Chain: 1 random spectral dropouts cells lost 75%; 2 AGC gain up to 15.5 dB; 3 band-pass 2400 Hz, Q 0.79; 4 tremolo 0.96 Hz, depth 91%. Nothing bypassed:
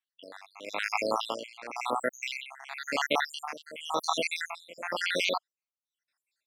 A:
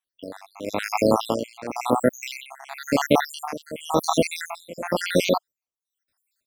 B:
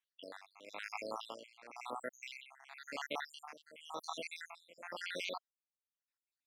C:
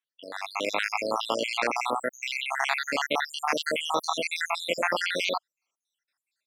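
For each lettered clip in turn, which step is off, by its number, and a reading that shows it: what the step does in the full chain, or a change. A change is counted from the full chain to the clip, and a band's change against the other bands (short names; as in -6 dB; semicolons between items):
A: 3, 125 Hz band +15.0 dB; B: 2, loudness change -13.5 LU; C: 4, momentary loudness spread change -8 LU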